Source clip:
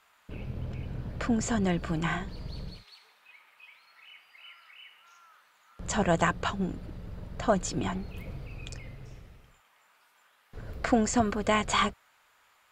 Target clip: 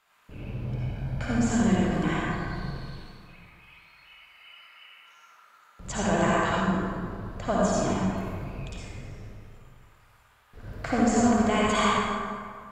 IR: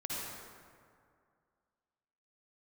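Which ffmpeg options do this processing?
-filter_complex "[0:a]asettb=1/sr,asplit=3[s0][s1][s2];[s0]atrim=end=0.694[s3];[s1]atrim=start=0.69:end=1.31,asetpts=PTS-STARTPTS,afade=t=in:d=0.004:c=qsin,afade=t=out:st=0.616:d=0.004:c=qsin,aecho=1:1:1.3:0.6,atrim=end_sample=27342[s4];[s2]atrim=start=1.306[s5];[s3][s4]acrossfade=d=0.004:c1=hsin:c2=qsin[s6];[s6][s5]acrossfade=d=0.004:c1=qsin:c2=hsin[s7];[1:a]atrim=start_sample=2205[s8];[s7][s8]afir=irnorm=-1:irlink=0"

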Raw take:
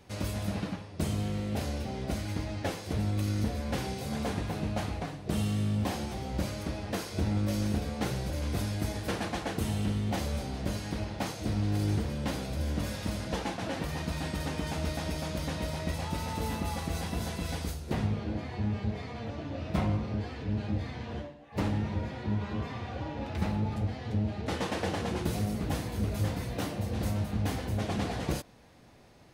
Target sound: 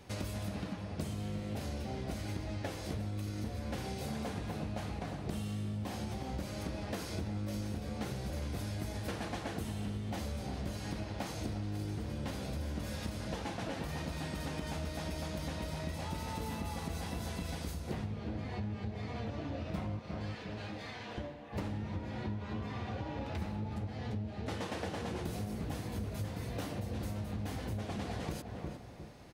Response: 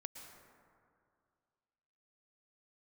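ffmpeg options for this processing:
-filter_complex "[0:a]asettb=1/sr,asplit=3[s0][s1][s2];[s0]atrim=end=19.994[s3];[s1]atrim=start=19.99:end=21.18,asetpts=PTS-STARTPTS,afade=t=in:d=0.004:c=qsin,afade=t=out:st=1.186:d=0.004:c=qsin,highpass=f=950:p=1[s4];[s2]atrim=start=21.176[s5];[s3][s4]acrossfade=d=0.004:c1=hsin:c2=qsin[s6];[s6][s5]acrossfade=d=0.004:c1=qsin:c2=hsin,asplit=2[s7][s8];[s8]adelay=355,lowpass=f=1500:p=1,volume=0.316,asplit=2[s9][s10];[s10]adelay=355,lowpass=f=1500:p=1,volume=0.31,asplit=2[s11][s12];[s12]adelay=355,lowpass=f=1500:p=1,volume=0.31[s13];[s7][s9][s11][s13]amix=inputs=4:normalize=0,acompressor=threshold=0.0141:ratio=6,volume=1.19"

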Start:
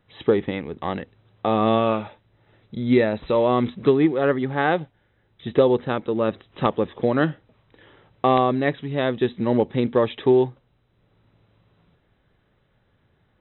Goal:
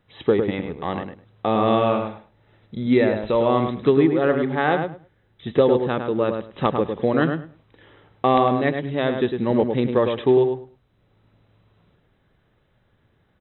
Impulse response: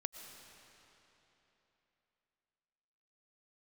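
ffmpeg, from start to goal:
-filter_complex "[0:a]asplit=2[s0][s1];[s1]adelay=104,lowpass=f=2200:p=1,volume=0.531,asplit=2[s2][s3];[s3]adelay=104,lowpass=f=2200:p=1,volume=0.18,asplit=2[s4][s5];[s5]adelay=104,lowpass=f=2200:p=1,volume=0.18[s6];[s0][s2][s4][s6]amix=inputs=4:normalize=0"

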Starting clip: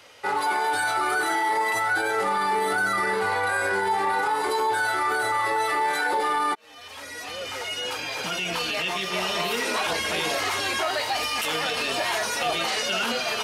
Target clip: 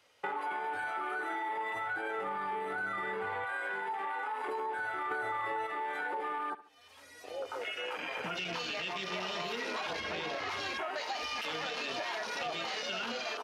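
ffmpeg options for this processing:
-filter_complex "[0:a]asettb=1/sr,asplit=3[s0][s1][s2];[s0]atrim=end=3.444[s3];[s1]atrim=start=3.44:end=4.48,asetpts=PTS-STARTPTS,afade=t=in:d=0.004:c=qsin,afade=t=out:st=1.036:d=0.004:c=qsin,lowshelf=f=470:g=-10.5[s4];[s2]atrim=start=4.476[s5];[s3][s4]acrossfade=d=0.004:c1=hsin:c2=qsin[s6];[s6][s5]acrossfade=d=0.004:c1=qsin:c2=hsin,asettb=1/sr,asplit=3[s7][s8][s9];[s7]atrim=end=5.114[s10];[s8]atrim=start=5.11:end=5.67,asetpts=PTS-STARTPTS,afade=t=in:d=0.004:c=qsin,afade=t=out:st=0.556:d=0.004:c=qsin,acontrast=44[s11];[s9]atrim=start=5.666[s12];[s10][s11]acrossfade=d=0.004:c1=hsin:c2=qsin[s13];[s13][s12]acrossfade=d=0.004:c1=qsin:c2=hsin,afwtdn=0.0282,asettb=1/sr,asplit=3[s14][s15][s16];[s14]atrim=end=10.004[s17];[s15]atrim=start=10:end=10.49,asetpts=PTS-STARTPTS,afade=t=in:d=0.004:c=qsin,afade=t=out:st=0.486:d=0.004:c=qsin,highshelf=f=5900:g=-10.5[s18];[s16]atrim=start=10.486[s19];[s17][s18]acrossfade=d=0.004:c1=hsin:c2=qsin[s20];[s20][s19]acrossfade=d=0.004:c1=qsin:c2=hsin,aecho=1:1:70|140:0.112|0.0325,acompressor=threshold=0.0178:ratio=5"

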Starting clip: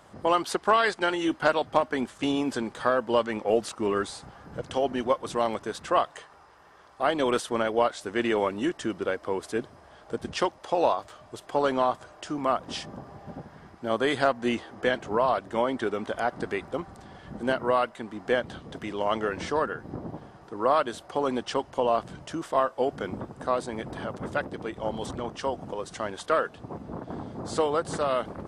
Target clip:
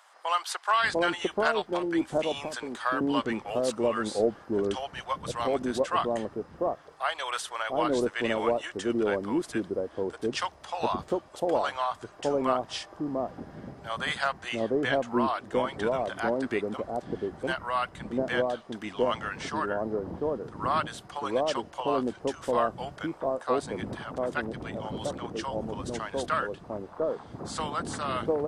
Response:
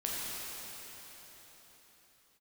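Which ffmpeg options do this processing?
-filter_complex "[0:a]asettb=1/sr,asplit=3[s0][s1][s2];[s0]atrim=end=1.624[s3];[s1]atrim=start=1.62:end=2.31,asetpts=PTS-STARTPTS,afade=t=in:d=0.004:c=qsin,afade=t=out:st=0.686:d=0.004:c=qsin,acrossover=split=400|1500[s4][s5][s6];[s4]acompressor=threshold=0.00891:ratio=4[s7];[s5]acompressor=threshold=0.0224:ratio=4[s8];[s6]acompressor=threshold=0.0158:ratio=4[s9];[s7][s8][s9]amix=inputs=3:normalize=0[s10];[s2]atrim=start=2.306[s11];[s3][s10]acrossfade=d=0.004:c1=hsin:c2=qsin[s12];[s12][s11]acrossfade=d=0.004:c1=qsin:c2=hsin,acrossover=split=750[s13][s14];[s13]adelay=700[s15];[s15][s14]amix=inputs=2:normalize=0"

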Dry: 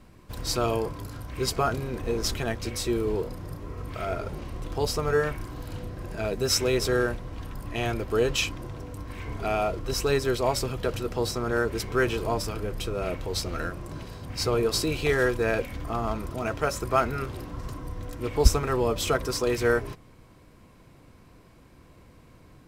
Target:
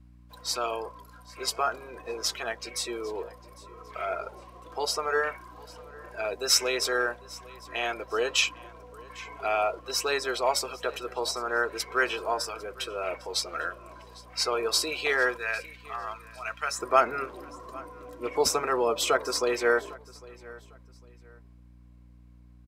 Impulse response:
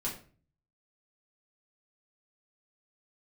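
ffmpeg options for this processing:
-af "asetnsamples=n=441:p=0,asendcmd='15.37 highpass f 1400;16.79 highpass f 450',highpass=660,afftdn=nr=14:nf=-42,dynaudnorm=f=180:g=31:m=1.41,aeval=exprs='val(0)+0.00251*(sin(2*PI*60*n/s)+sin(2*PI*2*60*n/s)/2+sin(2*PI*3*60*n/s)/3+sin(2*PI*4*60*n/s)/4+sin(2*PI*5*60*n/s)/5)':c=same,aecho=1:1:802|1604:0.0841|0.0236"

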